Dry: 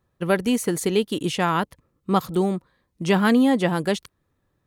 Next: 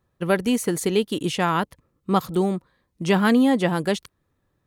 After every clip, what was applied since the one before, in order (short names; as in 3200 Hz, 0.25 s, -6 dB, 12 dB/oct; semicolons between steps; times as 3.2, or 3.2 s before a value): nothing audible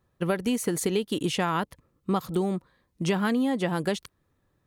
compressor, threshold -22 dBFS, peak gain reduction 8.5 dB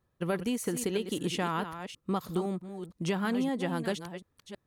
reverse delay 0.325 s, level -9.5 dB; gain -5 dB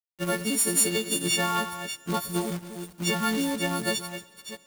frequency quantiser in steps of 4 st; companded quantiser 4-bit; Schroeder reverb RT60 3 s, combs from 26 ms, DRR 18.5 dB; gain +2 dB